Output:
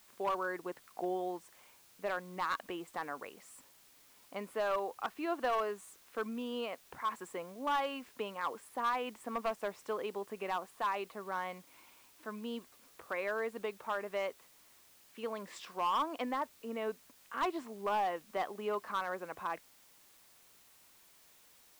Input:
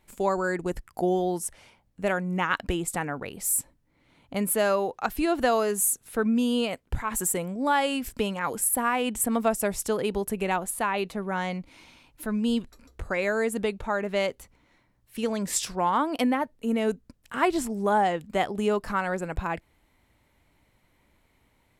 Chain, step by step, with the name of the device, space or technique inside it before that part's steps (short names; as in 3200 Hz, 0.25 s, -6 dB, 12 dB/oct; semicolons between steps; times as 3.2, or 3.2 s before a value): drive-through speaker (BPF 360–2900 Hz; bell 1100 Hz +8.5 dB 0.28 oct; hard clip -18.5 dBFS, distortion -14 dB; white noise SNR 24 dB); gain -9 dB